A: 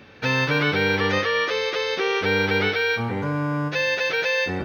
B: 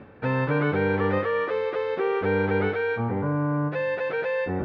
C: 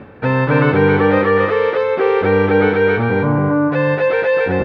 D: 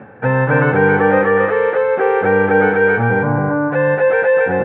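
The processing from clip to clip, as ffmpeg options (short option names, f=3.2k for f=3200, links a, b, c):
-af "lowpass=1.2k,areverse,acompressor=mode=upward:threshold=-28dB:ratio=2.5,areverse"
-af "aecho=1:1:269:0.668,volume=9dB"
-af "highpass=110,equalizer=f=120:t=q:w=4:g=10,equalizer=f=210:t=q:w=4:g=5,equalizer=f=510:t=q:w=4:g=6,equalizer=f=800:t=q:w=4:g=10,equalizer=f=1.6k:t=q:w=4:g=10,lowpass=f=2.9k:w=0.5412,lowpass=f=2.9k:w=1.3066,volume=-4.5dB"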